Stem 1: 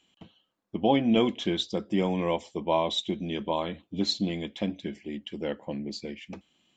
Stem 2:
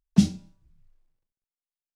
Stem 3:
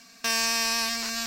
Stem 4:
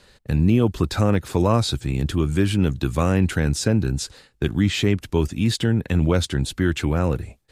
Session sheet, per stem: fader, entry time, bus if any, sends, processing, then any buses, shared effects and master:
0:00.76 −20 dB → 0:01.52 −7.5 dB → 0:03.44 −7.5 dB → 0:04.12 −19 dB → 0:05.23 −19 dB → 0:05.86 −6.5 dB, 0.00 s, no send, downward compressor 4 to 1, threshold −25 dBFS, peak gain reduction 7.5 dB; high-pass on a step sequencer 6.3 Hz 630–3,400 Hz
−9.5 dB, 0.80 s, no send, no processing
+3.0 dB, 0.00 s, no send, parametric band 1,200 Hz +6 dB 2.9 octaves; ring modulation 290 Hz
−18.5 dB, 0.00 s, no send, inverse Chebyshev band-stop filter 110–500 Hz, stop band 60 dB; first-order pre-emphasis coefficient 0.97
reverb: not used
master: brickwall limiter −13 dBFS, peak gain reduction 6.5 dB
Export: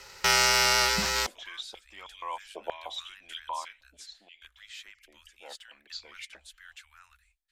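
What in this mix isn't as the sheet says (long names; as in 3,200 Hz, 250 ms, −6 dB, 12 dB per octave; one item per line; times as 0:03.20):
stem 2 −9.5 dB → −19.0 dB
stem 4: missing first-order pre-emphasis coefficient 0.97
master: missing brickwall limiter −13 dBFS, peak gain reduction 6.5 dB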